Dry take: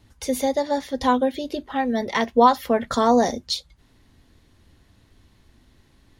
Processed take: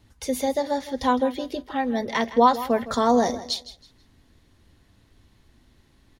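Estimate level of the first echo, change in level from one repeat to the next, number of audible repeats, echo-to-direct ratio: −15.0 dB, −11.5 dB, 2, −14.5 dB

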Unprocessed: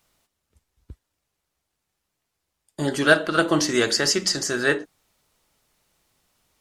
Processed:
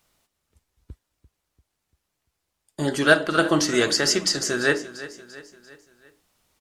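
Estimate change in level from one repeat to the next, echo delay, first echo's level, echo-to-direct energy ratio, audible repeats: −6.0 dB, 343 ms, −16.0 dB, −15.0 dB, 4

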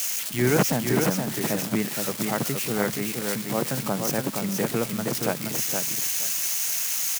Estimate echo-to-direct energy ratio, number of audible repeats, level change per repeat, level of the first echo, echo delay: −4.5 dB, 2, −15.5 dB, −4.5 dB, 471 ms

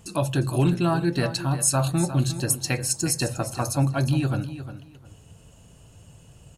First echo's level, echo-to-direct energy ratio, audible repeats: −12.0 dB, −12.0 dB, 2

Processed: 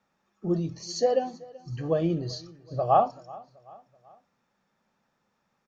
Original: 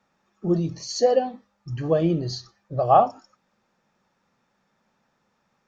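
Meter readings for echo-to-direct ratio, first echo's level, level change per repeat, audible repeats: −21.0 dB, −22.0 dB, −6.5 dB, 3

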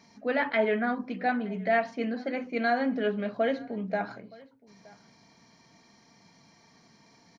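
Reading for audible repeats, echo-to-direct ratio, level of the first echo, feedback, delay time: 1, −23.5 dB, −23.5 dB, repeats not evenly spaced, 920 ms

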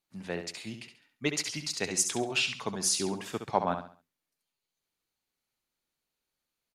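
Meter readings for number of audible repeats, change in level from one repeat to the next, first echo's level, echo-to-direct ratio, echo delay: 3, −9.5 dB, −8.0 dB, −7.5 dB, 68 ms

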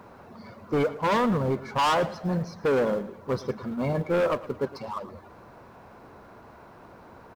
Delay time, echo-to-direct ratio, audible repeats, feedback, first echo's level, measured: 112 ms, −16.5 dB, 3, 36%, −17.0 dB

